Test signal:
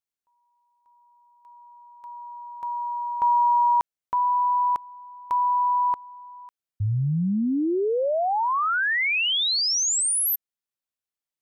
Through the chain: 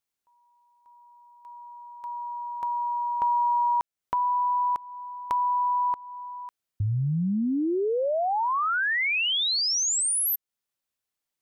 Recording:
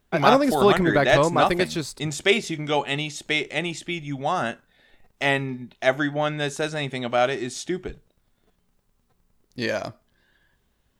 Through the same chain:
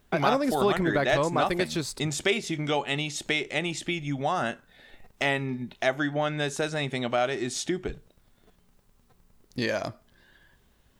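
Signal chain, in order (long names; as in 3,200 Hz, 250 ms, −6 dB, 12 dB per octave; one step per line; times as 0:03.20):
downward compressor 2 to 1, threshold −35 dBFS
level +5 dB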